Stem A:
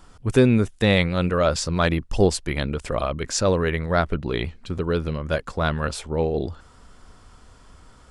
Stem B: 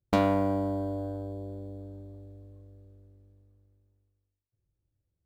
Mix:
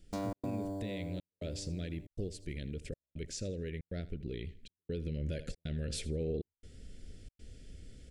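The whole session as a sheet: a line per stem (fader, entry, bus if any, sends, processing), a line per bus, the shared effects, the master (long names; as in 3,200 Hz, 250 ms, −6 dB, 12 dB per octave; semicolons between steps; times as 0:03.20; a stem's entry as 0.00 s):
0:04.79 −13 dB → 0:05.33 −5 dB, 0.00 s, no send, echo send −17.5 dB, Chebyshev band-stop filter 470–2,200 Hz, order 2; downward compressor, threshold −26 dBFS, peak gain reduction 13.5 dB
−10.5 dB, 0.00 s, no send, no echo send, high shelf with overshoot 4,100 Hz +10.5 dB, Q 1.5; mains-hum notches 50/100 Hz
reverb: not used
echo: repeating echo 80 ms, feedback 27%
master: gate pattern "xxx.xxxxxxx..xxx" 138 BPM −60 dB; low-shelf EQ 290 Hz +6 dB; brickwall limiter −27.5 dBFS, peak gain reduction 8 dB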